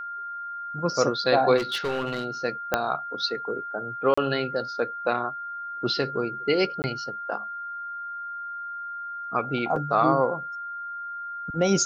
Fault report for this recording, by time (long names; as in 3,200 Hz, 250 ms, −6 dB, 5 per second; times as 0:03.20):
whistle 1,400 Hz −32 dBFS
0:01.57–0:02.26: clipping −23 dBFS
0:02.74: click −7 dBFS
0:04.14–0:04.17: drop-out 35 ms
0:06.82–0:06.84: drop-out 19 ms
0:09.76: drop-out 3.2 ms